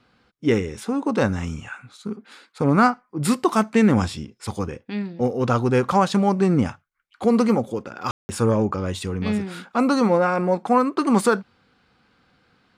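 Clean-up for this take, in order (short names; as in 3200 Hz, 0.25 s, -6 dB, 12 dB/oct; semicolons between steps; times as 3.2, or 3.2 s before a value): room tone fill 8.11–8.29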